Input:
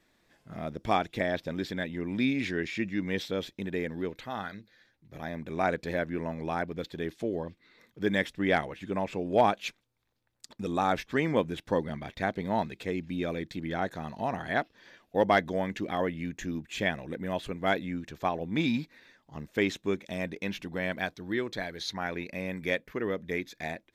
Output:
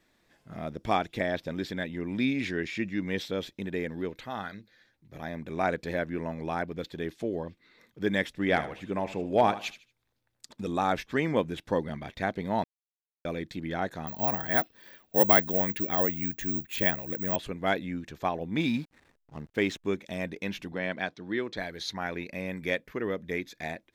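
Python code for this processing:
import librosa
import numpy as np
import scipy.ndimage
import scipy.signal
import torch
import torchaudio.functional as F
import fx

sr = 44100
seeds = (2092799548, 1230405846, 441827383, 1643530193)

y = fx.echo_feedback(x, sr, ms=76, feedback_pct=28, wet_db=-14, at=(8.36, 10.69), fade=0.02)
y = fx.resample_bad(y, sr, factor=2, down='filtered', up='zero_stuff', at=(14.07, 17.36))
y = fx.backlash(y, sr, play_db=-48.5, at=(18.6, 19.85))
y = fx.bandpass_edges(y, sr, low_hz=130.0, high_hz=5500.0, at=(20.72, 21.57))
y = fx.edit(y, sr, fx.silence(start_s=12.64, length_s=0.61), tone=tone)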